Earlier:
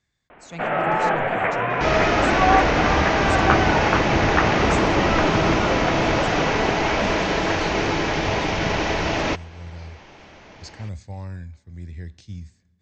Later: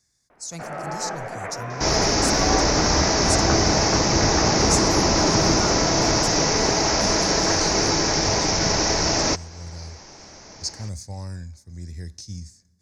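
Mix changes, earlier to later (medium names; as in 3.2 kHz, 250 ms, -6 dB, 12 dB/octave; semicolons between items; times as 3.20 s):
speech: remove brick-wall FIR low-pass 8.4 kHz; first sound -9.5 dB; master: add resonant high shelf 4.1 kHz +10 dB, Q 3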